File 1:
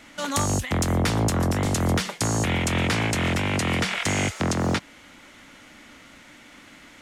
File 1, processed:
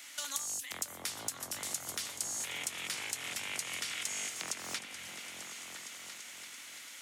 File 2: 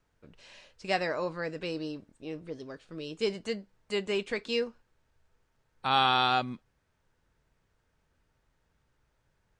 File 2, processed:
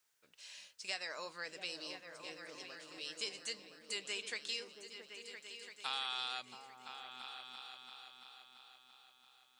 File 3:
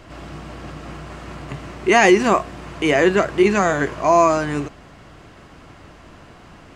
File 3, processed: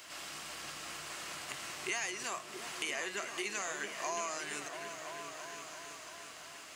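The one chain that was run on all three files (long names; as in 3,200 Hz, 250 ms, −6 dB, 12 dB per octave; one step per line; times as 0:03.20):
first difference
downward compressor 4 to 1, threshold −45 dBFS
on a send: echo whose low-pass opens from repeat to repeat 338 ms, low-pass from 200 Hz, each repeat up 2 octaves, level −3 dB
on the sum: level +7.5 dB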